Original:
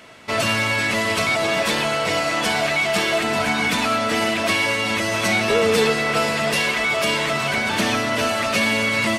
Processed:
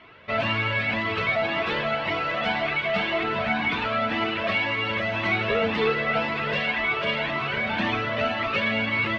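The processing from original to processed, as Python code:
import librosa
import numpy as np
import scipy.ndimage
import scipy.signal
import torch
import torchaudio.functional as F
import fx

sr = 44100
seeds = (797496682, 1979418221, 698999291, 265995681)

y = scipy.signal.sosfilt(scipy.signal.butter(4, 3300.0, 'lowpass', fs=sr, output='sos'), x)
y = fx.doubler(y, sr, ms=46.0, db=-12)
y = fx.comb_cascade(y, sr, direction='rising', hz=1.9)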